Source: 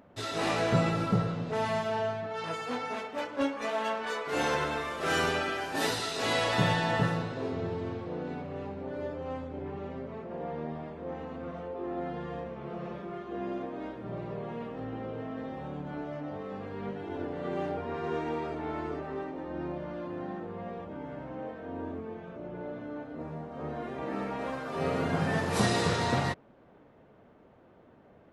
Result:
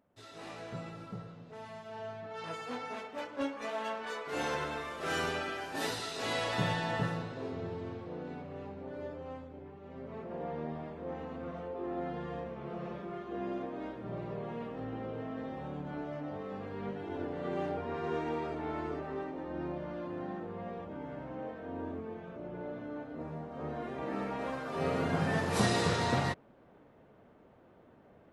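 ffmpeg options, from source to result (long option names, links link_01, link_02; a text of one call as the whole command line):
ffmpeg -i in.wav -af "volume=5.5dB,afade=type=in:start_time=1.83:duration=0.64:silence=0.281838,afade=type=out:start_time=9.13:duration=0.68:silence=0.421697,afade=type=in:start_time=9.81:duration=0.39:silence=0.281838" out.wav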